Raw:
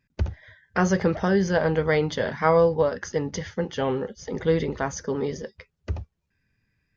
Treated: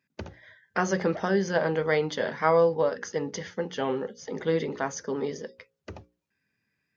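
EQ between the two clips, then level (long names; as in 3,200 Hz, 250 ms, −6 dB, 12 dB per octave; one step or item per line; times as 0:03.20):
high-pass filter 190 Hz 12 dB per octave
mains-hum notches 60/120/180/240/300/360/420/480/540 Hz
−2.0 dB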